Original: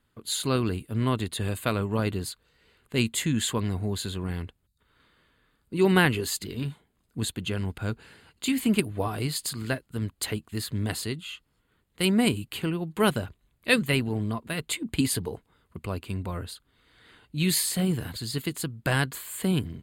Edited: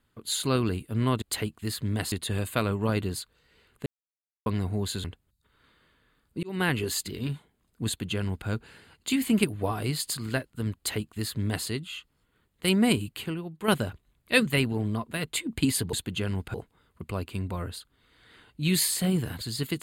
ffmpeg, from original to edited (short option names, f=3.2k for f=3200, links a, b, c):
-filter_complex "[0:a]asplit=10[a][b][c][d][e][f][g][h][i][j];[a]atrim=end=1.222[k];[b]atrim=start=10.118:end=11.022[l];[c]atrim=start=1.218:end=2.96,asetpts=PTS-STARTPTS,afade=t=out:st=1.738:d=0.004:c=hsin[m];[d]atrim=start=2.96:end=3.56,asetpts=PTS-STARTPTS,volume=0[n];[e]atrim=start=3.56:end=4.142,asetpts=PTS-STARTPTS,afade=t=in:d=0.004:c=hsin[o];[f]atrim=start=4.398:end=5.79,asetpts=PTS-STARTPTS,afade=t=out:st=1.388:d=0.004:c=hsin[p];[g]atrim=start=5.79:end=13.04,asetpts=PTS-STARTPTS,afade=t=in:d=0.43,afade=t=out:st=6.63:d=0.62:c=qua:silence=0.421697[q];[h]atrim=start=13.04:end=15.292,asetpts=PTS-STARTPTS,afade=t=in:d=0.004:c=hsin:silence=0.421697[r];[i]atrim=start=7.228:end=7.842[s];[j]atrim=start=15.288[t];[k][l]acrossfade=d=0.004:c1=hsin:c2=hsin[u];[m][n][o]concat=n=3:v=0:a=1[v];[u][v]acrossfade=d=0.004:c1=hsin:c2=hsin[w];[p][q][r]concat=n=3:v=0:a=1[x];[w][x]acrossfade=d=0.004:c1=hsin:c2=hsin[y];[y][s]acrossfade=d=0.004:c1=hsin:c2=hsin[z];[z][t]acrossfade=d=0.004:c1=hsin:c2=hsin"